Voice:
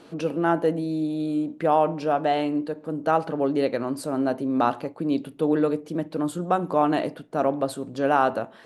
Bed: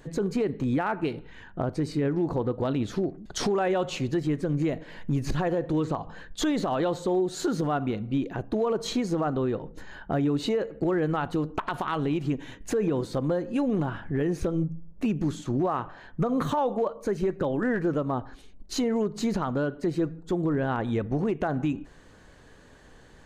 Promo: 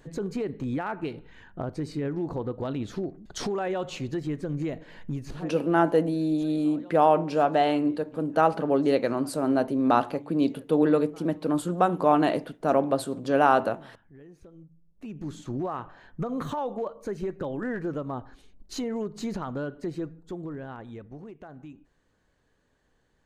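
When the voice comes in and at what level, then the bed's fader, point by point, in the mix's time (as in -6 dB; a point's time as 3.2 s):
5.30 s, +0.5 dB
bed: 5.07 s -4 dB
5.77 s -23 dB
14.71 s -23 dB
15.38 s -5 dB
19.83 s -5 dB
21.35 s -17.5 dB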